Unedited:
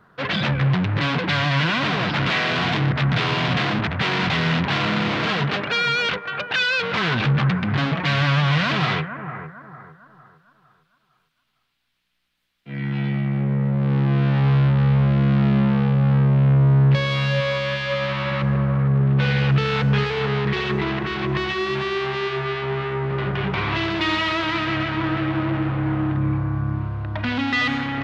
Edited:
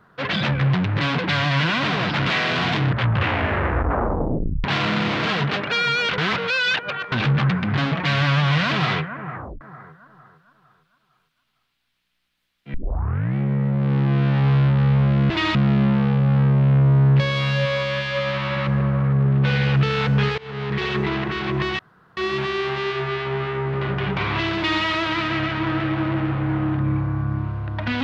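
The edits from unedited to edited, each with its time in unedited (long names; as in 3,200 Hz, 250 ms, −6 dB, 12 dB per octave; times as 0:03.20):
0:02.79: tape stop 1.85 s
0:06.18–0:07.12: reverse
0:09.34: tape stop 0.27 s
0:12.74: tape start 0.62 s
0:20.13–0:20.61: fade in, from −23 dB
0:21.54: splice in room tone 0.38 s
0:23.94–0:24.19: duplicate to 0:15.30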